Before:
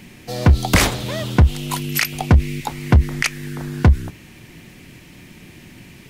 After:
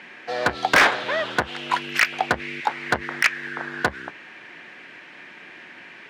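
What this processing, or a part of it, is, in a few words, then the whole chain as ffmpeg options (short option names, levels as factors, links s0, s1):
megaphone: -af "highpass=610,lowpass=2500,equalizer=f=1600:t=o:w=0.41:g=8,asoftclip=type=hard:threshold=0.178,volume=1.88"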